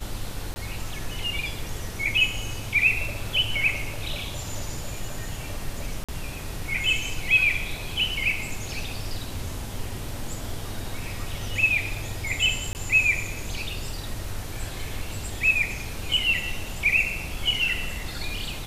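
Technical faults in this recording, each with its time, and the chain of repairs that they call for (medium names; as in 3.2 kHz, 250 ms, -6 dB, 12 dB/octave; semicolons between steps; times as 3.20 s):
0.54–0.56 s: dropout 20 ms
6.04–6.09 s: dropout 46 ms
12.73–12.75 s: dropout 19 ms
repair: interpolate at 0.54 s, 20 ms; interpolate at 6.04 s, 46 ms; interpolate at 12.73 s, 19 ms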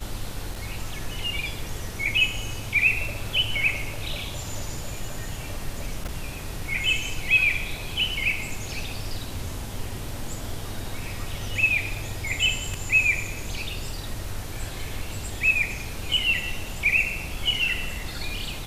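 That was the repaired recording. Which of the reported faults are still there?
nothing left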